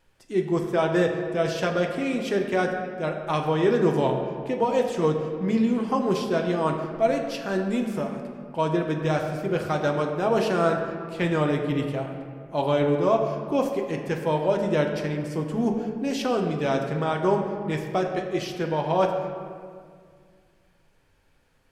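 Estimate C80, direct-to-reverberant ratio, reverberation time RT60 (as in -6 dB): 6.5 dB, 2.0 dB, 2.0 s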